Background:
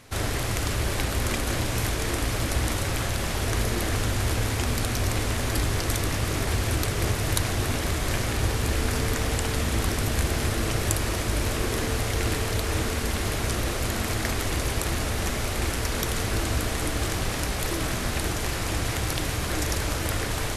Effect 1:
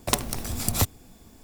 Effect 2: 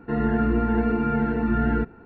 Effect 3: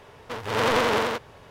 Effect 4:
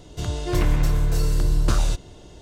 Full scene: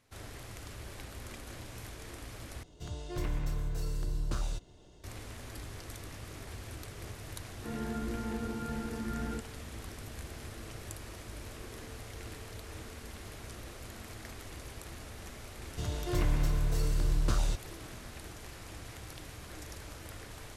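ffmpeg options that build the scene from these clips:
-filter_complex "[4:a]asplit=2[a][b];[0:a]volume=-19dB[c];[a]acompressor=mode=upward:threshold=-38dB:ratio=2.5:attack=3.2:release=140:knee=2.83:detection=peak[d];[c]asplit=2[e][f];[e]atrim=end=2.634[g];[d]atrim=end=2.41,asetpts=PTS-STARTPTS,volume=-14dB[h];[f]atrim=start=5.036[i];[2:a]atrim=end=2.05,asetpts=PTS-STARTPTS,volume=-15dB,afade=t=in:d=0.004:c=hsin,afade=t=out:st=2.046:d=0.004:c=hsin,adelay=7560[j];[b]atrim=end=2.41,asetpts=PTS-STARTPTS,volume=-9dB,afade=t=in:d=0.004:c=hsin,afade=t=out:st=2.406:d=0.004:c=hsin,adelay=15600[k];[g][h]acrossfade=d=0.004:c1=hsin:c2=hsin[l];[l][i]acrossfade=d=0.004:c1=hsin:c2=hsin[m];[m][j][k]amix=inputs=3:normalize=0"

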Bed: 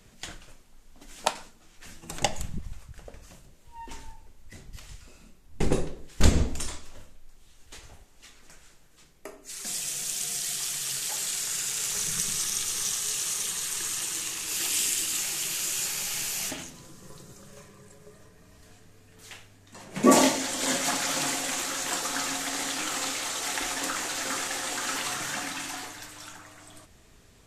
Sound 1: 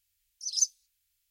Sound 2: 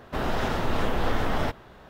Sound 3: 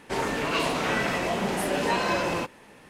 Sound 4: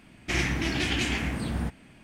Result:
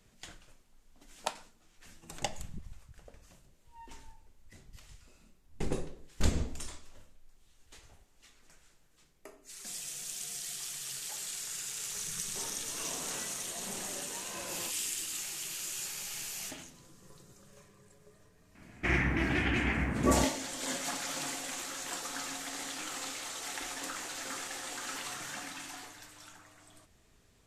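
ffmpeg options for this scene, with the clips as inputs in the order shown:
-filter_complex "[0:a]volume=-9dB[a];[3:a]tremolo=f=1.3:d=0.5[b];[4:a]highshelf=f=2.8k:t=q:w=1.5:g=-11[c];[b]atrim=end=2.89,asetpts=PTS-STARTPTS,volume=-17dB,afade=t=in:d=0.004:c=hsin,afade=t=out:st=2.886:d=0.004:c=hsin,adelay=12250[d];[c]atrim=end=2.03,asetpts=PTS-STARTPTS,volume=-2dB,afade=t=in:d=0.004:c=hsin,afade=t=out:st=2.026:d=0.004:c=hsin,adelay=18550[e];[a][d][e]amix=inputs=3:normalize=0"

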